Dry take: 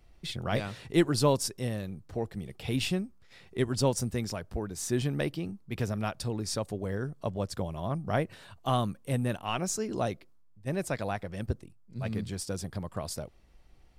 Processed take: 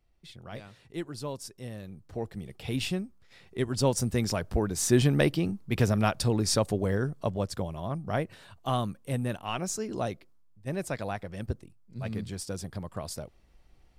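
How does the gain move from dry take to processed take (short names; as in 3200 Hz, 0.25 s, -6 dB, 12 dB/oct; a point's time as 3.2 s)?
1.28 s -12 dB
2.24 s -1 dB
3.65 s -1 dB
4.42 s +7 dB
6.72 s +7 dB
7.86 s -1 dB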